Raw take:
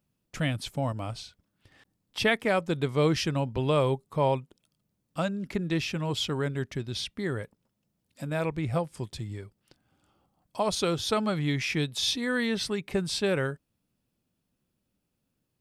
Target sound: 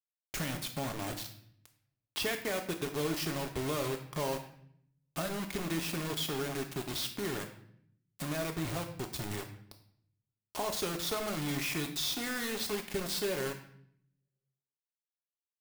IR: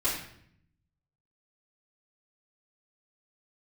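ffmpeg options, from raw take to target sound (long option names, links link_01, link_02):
-filter_complex "[0:a]acompressor=threshold=-42dB:ratio=3,acrusher=bits=6:mix=0:aa=0.000001,asplit=2[link_01][link_02];[1:a]atrim=start_sample=2205,lowshelf=frequency=62:gain=-11,highshelf=frequency=8500:gain=10[link_03];[link_02][link_03]afir=irnorm=-1:irlink=0,volume=-11.5dB[link_04];[link_01][link_04]amix=inputs=2:normalize=0,volume=2.5dB"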